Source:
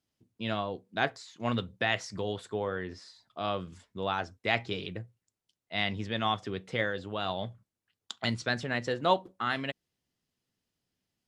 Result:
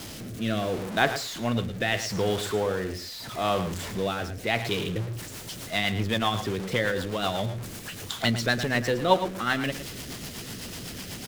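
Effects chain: jump at every zero crossing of -34.5 dBFS; rotary cabinet horn 0.75 Hz, later 8 Hz, at 4.51 s; echo from a far wall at 19 m, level -11 dB; trim +5.5 dB

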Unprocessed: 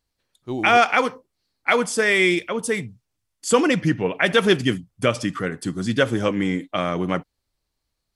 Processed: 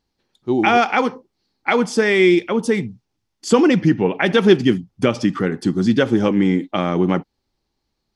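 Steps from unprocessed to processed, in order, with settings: resonant high shelf 7 kHz -7 dB, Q 1.5; in parallel at +0.5 dB: compression, threshold -24 dBFS, peak gain reduction 13 dB; on the sum: small resonant body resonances 220/350/810 Hz, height 9 dB, ringing for 25 ms; trim -4.5 dB

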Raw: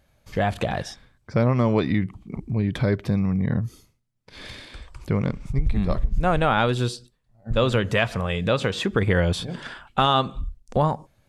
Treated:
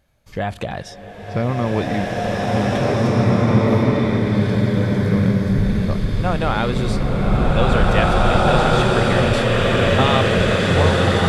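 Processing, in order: swelling reverb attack 2180 ms, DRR -8 dB; trim -1 dB

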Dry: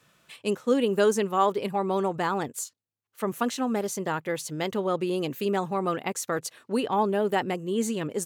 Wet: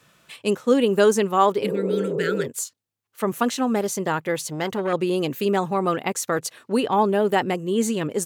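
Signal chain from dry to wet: 1.64–2.44 s: spectral replace 240–1300 Hz before; 4.42–4.93 s: transformer saturation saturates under 870 Hz; trim +5 dB

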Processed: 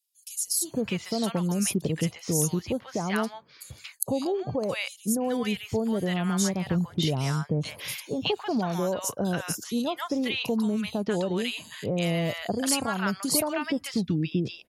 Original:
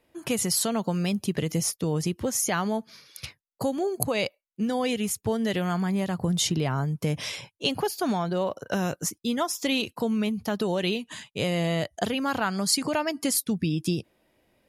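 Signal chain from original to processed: three bands offset in time highs, lows, mids 470/610 ms, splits 940/4600 Hz

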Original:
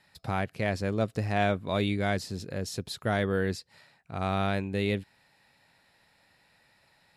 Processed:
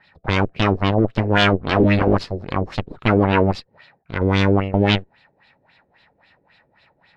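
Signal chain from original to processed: 1.59–2.15 s: octave divider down 1 oct, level -2 dB; Chebyshev shaper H 6 -7 dB, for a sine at -14.5 dBFS; LFO low-pass sine 3.7 Hz 390–3800 Hz; trim +6 dB

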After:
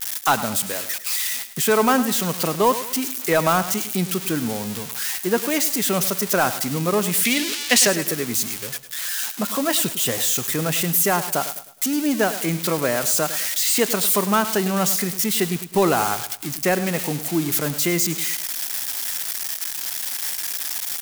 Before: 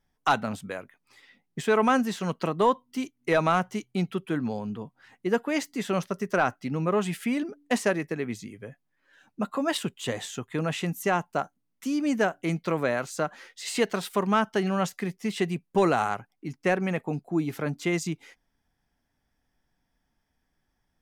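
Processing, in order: zero-crossing glitches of -19 dBFS; 7.25–7.87 s: frequency weighting D; on a send: feedback delay 104 ms, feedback 38%, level -13.5 dB; on the sum: trim +4 dB

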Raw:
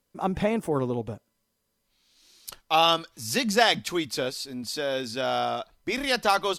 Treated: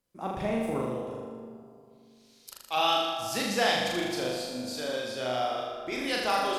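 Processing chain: 0.81–2.77 s: bass shelf 230 Hz -9 dB; on a send: flutter echo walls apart 6.8 m, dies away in 1.1 s; on the sum: algorithmic reverb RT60 2.5 s, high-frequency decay 0.3×, pre-delay 110 ms, DRR 9 dB; trim -8 dB

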